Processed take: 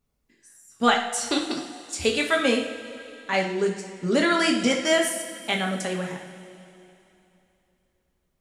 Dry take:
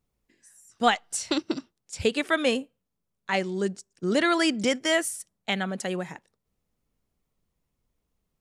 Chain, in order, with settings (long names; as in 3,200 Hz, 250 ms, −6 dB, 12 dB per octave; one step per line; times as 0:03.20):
0:01.44–0:02.39: spectral tilt +1.5 dB per octave
coupled-rooms reverb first 0.53 s, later 3 s, from −14 dB, DRR 0 dB